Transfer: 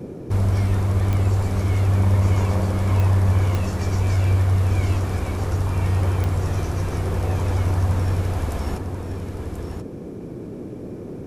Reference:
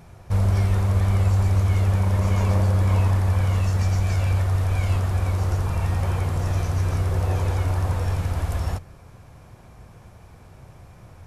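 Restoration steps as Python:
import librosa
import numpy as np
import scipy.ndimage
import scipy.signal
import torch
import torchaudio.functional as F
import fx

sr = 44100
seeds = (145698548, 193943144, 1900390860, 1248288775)

y = fx.fix_declick_ar(x, sr, threshold=10.0)
y = fx.noise_reduce(y, sr, print_start_s=9.87, print_end_s=10.37, reduce_db=13.0)
y = fx.fix_echo_inverse(y, sr, delay_ms=1034, level_db=-7.0)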